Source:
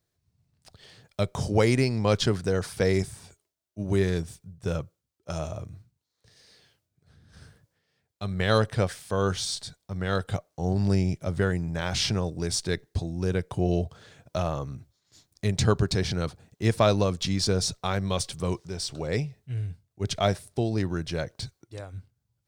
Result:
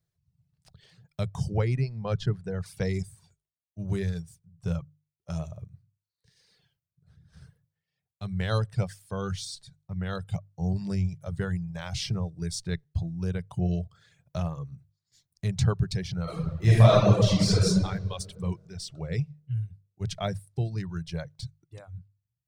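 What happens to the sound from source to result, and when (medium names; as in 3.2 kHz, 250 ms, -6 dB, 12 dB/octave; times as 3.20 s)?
1.57–2.66 s: low-pass 2 kHz 6 dB/octave
16.23–17.66 s: reverb throw, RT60 2.1 s, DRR -10 dB
whole clip: hum notches 50/100/150 Hz; reverb removal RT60 1.4 s; resonant low shelf 200 Hz +6.5 dB, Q 3; trim -6.5 dB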